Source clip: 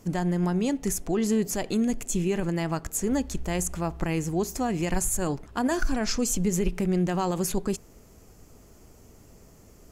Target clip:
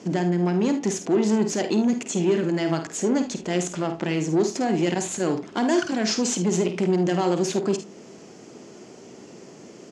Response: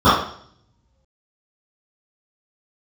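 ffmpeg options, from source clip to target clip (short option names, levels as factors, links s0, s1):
-filter_complex "[0:a]asettb=1/sr,asplit=3[s0][s1][s2];[s0]atrim=end=5.454[s3];[s1]atrim=start=5.45:end=7.16,asetpts=PTS-STARTPTS,afade=t=in:d=0.004:c=qsin,afade=t=out:st=1.706:d=0.004:c=qsin,highshelf=f=5000:g=5.5[s4];[s2]atrim=start=7.156[s5];[s3][s4]acrossfade=d=0.004:c1=hsin:c2=qsin[s6];[s6][s5]acrossfade=d=0.004:c1=qsin:c2=hsin,asplit=2[s7][s8];[s8]acompressor=threshold=0.0112:ratio=6,volume=0.794[s9];[s7][s9]amix=inputs=2:normalize=0,asoftclip=type=tanh:threshold=0.0668,highpass=f=160:w=0.5412,highpass=f=160:w=1.3066,equalizer=f=360:t=q:w=4:g=5,equalizer=f=1200:t=q:w=4:g=-4,equalizer=f=3000:t=q:w=4:g=3,lowpass=f=6600:w=0.5412,lowpass=f=6600:w=1.3066,aecho=1:1:51|75:0.335|0.188,asplit=2[s10][s11];[1:a]atrim=start_sample=2205[s12];[s11][s12]afir=irnorm=-1:irlink=0,volume=0.00473[s13];[s10][s13]amix=inputs=2:normalize=0,volume=1.88"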